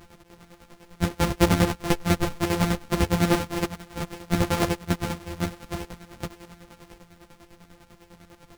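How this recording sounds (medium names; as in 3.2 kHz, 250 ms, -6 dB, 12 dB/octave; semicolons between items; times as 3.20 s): a buzz of ramps at a fixed pitch in blocks of 256 samples; chopped level 10 Hz, depth 65%, duty 40%; a shimmering, thickened sound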